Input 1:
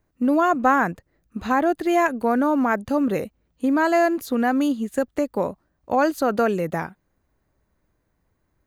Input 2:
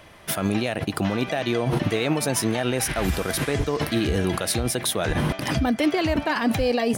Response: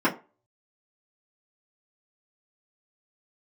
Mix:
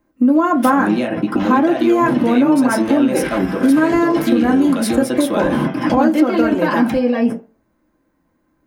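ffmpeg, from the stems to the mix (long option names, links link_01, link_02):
-filter_complex "[0:a]volume=1dB,asplit=3[link_01][link_02][link_03];[link_02]volume=-12dB[link_04];[1:a]adelay=350,volume=-1.5dB,asplit=2[link_05][link_06];[link_06]volume=-9.5dB[link_07];[link_03]apad=whole_len=322999[link_08];[link_05][link_08]sidechaingate=range=-33dB:threshold=-42dB:ratio=16:detection=peak[link_09];[2:a]atrim=start_sample=2205[link_10];[link_04][link_07]amix=inputs=2:normalize=0[link_11];[link_11][link_10]afir=irnorm=-1:irlink=0[link_12];[link_01][link_09][link_12]amix=inputs=3:normalize=0,acompressor=threshold=-12dB:ratio=3"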